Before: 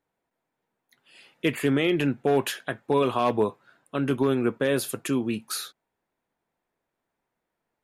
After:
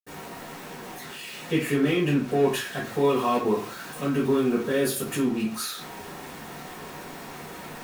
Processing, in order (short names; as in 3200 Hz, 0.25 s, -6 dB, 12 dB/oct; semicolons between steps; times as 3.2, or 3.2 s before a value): zero-crossing step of -31.5 dBFS; 2.77–5.15 high shelf 9800 Hz +5 dB; reverb RT60 0.40 s, pre-delay 65 ms, DRR -60 dB; gain -4 dB